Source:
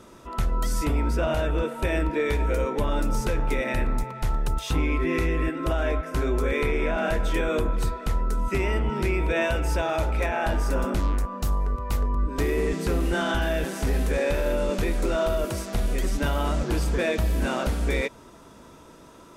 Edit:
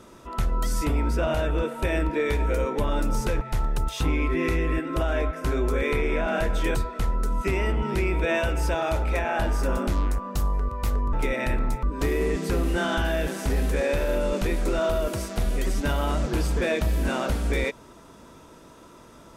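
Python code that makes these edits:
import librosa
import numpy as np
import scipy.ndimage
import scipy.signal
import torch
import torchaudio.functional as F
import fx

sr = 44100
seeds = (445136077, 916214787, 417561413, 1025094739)

y = fx.edit(x, sr, fx.move(start_s=3.41, length_s=0.7, to_s=12.2),
    fx.cut(start_s=7.45, length_s=0.37), tone=tone)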